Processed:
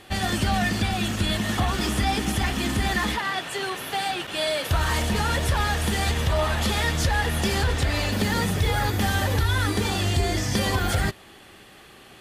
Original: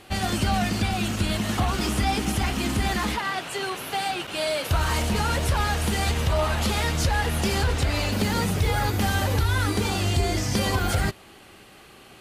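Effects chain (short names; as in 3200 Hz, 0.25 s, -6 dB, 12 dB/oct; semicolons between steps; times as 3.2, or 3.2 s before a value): small resonant body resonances 1800/3400 Hz, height 10 dB, ringing for 35 ms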